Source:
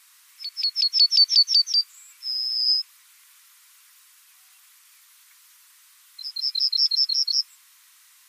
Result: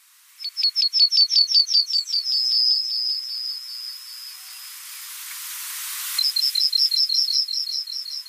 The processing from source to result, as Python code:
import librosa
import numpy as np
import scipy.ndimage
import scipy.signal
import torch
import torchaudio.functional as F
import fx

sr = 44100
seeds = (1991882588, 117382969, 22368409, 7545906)

y = fx.recorder_agc(x, sr, target_db=-12.5, rise_db_per_s=7.4, max_gain_db=30)
y = fx.echo_wet_highpass(y, sr, ms=388, feedback_pct=58, hz=2200.0, wet_db=-5.5)